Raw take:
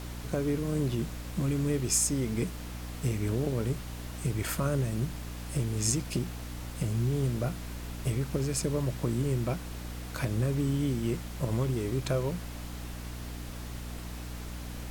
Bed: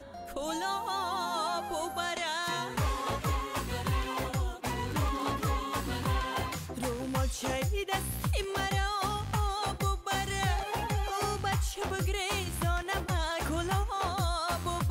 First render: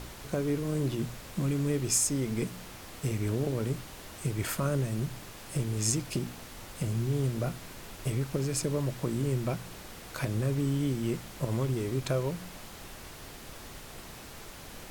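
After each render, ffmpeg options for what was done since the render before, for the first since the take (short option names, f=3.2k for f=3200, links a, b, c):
-af "bandreject=f=60:t=h:w=4,bandreject=f=120:t=h:w=4,bandreject=f=180:t=h:w=4,bandreject=f=240:t=h:w=4,bandreject=f=300:t=h:w=4"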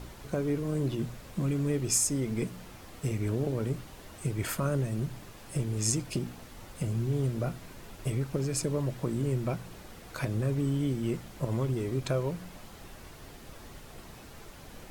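-af "afftdn=nr=6:nf=-47"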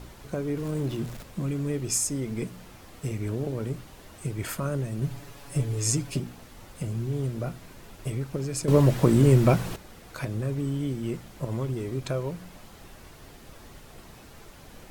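-filter_complex "[0:a]asettb=1/sr,asplit=3[a][b][c];[a]atrim=end=0.574[d];[b]atrim=start=0.57:end=1.23,asetpts=PTS-STARTPTS,afade=t=in:d=0.004:c=qsin,afade=t=out:st=0.656:d=0.004:c=qsin,aeval=exprs='val(0)+0.5*0.01*sgn(val(0))':c=same[e];[c]atrim=start=1.226[f];[d][e]acrossfade=d=0.004:c1=hsin:c2=qsin[g];[g][f]acrossfade=d=0.004:c1=qsin:c2=hsin,asettb=1/sr,asplit=3[h][i][j];[h]atrim=end=5.014[k];[i]atrim=start=5.01:end=6.2,asetpts=PTS-STARTPTS,afade=t=in:d=0.004:c=qsin,afade=t=out:st=1.186:d=0.004:c=qsin,aecho=1:1:7.1:0.9,atrim=end_sample=52479[l];[j]atrim=start=6.196[m];[k][l]acrossfade=d=0.004:c1=hsin:c2=qsin[n];[n][m]acrossfade=d=0.004:c1=qsin:c2=hsin,asplit=3[o][p][q];[o]atrim=end=8.682[r];[p]atrim=start=8.678:end=9.762,asetpts=PTS-STARTPTS,volume=12dB[s];[q]atrim=start=9.758[t];[r][s]acrossfade=d=0.004:c1=hsin:c2=hsin[u];[u][t]acrossfade=d=0.004:c1=hsin:c2=hsin"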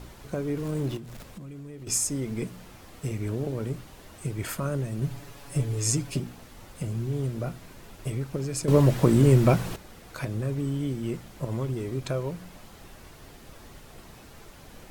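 -filter_complex "[0:a]asettb=1/sr,asplit=3[a][b][c];[a]atrim=end=0.974[d];[b]atrim=start=0.97:end=1.87,asetpts=PTS-STARTPTS,afade=t=in:d=0.004:c=qsin,afade=t=out:st=0.896:d=0.004:c=qsin,acompressor=threshold=-38dB:ratio=8:attack=3.2:release=140:knee=1:detection=peak[e];[c]atrim=start=1.866[f];[d][e]acrossfade=d=0.004:c1=hsin:c2=qsin[g];[g][f]acrossfade=d=0.004:c1=qsin:c2=hsin"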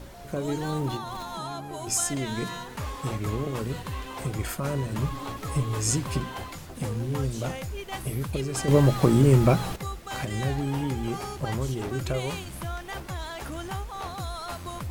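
-filter_complex "[1:a]volume=-4dB[a];[0:a][a]amix=inputs=2:normalize=0"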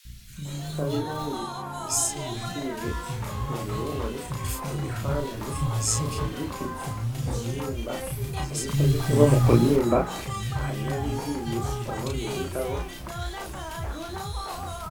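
-filter_complex "[0:a]asplit=2[a][b];[b]adelay=34,volume=-2.5dB[c];[a][c]amix=inputs=2:normalize=0,acrossover=split=190|2100[d][e][f];[d]adelay=50[g];[e]adelay=450[h];[g][h][f]amix=inputs=3:normalize=0"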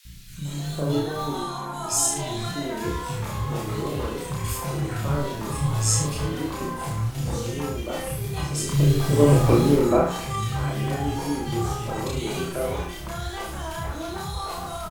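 -filter_complex "[0:a]asplit=2[a][b];[b]adelay=28,volume=-2.5dB[c];[a][c]amix=inputs=2:normalize=0,asplit=2[d][e];[e]aecho=0:1:74:0.422[f];[d][f]amix=inputs=2:normalize=0"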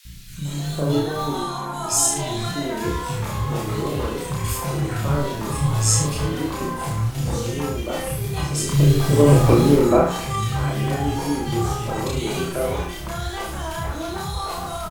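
-af "volume=3.5dB,alimiter=limit=-3dB:level=0:latency=1"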